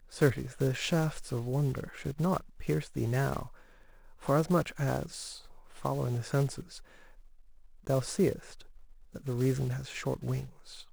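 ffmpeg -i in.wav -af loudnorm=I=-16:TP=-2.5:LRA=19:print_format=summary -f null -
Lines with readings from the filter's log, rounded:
Input Integrated:    -32.5 LUFS
Input True Peak:     -11.4 dBTP
Input LRA:             2.8 LU
Input Threshold:     -43.7 LUFS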